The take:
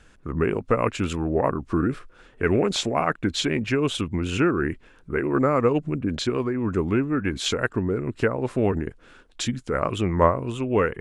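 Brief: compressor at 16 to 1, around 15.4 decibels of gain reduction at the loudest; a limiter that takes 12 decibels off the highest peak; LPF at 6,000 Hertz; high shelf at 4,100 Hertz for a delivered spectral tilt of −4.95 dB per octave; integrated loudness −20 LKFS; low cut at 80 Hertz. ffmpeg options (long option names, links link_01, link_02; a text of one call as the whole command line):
ffmpeg -i in.wav -af "highpass=80,lowpass=6000,highshelf=frequency=4100:gain=9,acompressor=threshold=-26dB:ratio=16,volume=15.5dB,alimiter=limit=-10dB:level=0:latency=1" out.wav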